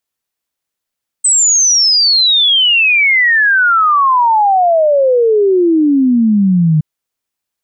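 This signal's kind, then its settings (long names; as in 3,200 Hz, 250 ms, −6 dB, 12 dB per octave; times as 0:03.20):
exponential sine sweep 8,200 Hz → 150 Hz 5.57 s −7 dBFS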